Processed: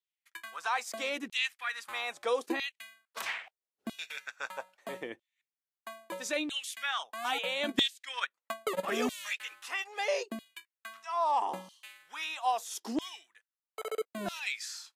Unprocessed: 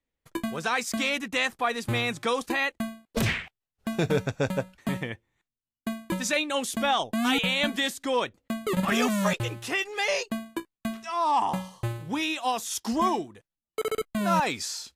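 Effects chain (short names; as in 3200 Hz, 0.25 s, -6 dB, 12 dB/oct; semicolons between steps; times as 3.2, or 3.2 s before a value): LFO high-pass saw down 0.77 Hz 280–3500 Hz; 7.68–8.86 transient shaper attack +8 dB, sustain -8 dB; gain -8.5 dB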